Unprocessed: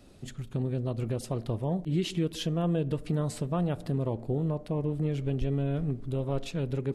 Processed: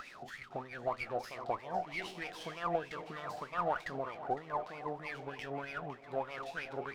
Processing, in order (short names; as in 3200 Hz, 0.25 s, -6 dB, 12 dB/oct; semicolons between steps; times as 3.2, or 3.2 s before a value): spectral trails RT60 0.30 s; bell 5500 Hz +11 dB 1 oct; upward compressor, threshold -34 dBFS; wah 3.2 Hz 700–2300 Hz, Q 14; split-band echo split 480 Hz, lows 0.277 s, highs 0.507 s, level -15 dB; running maximum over 3 samples; gain +18 dB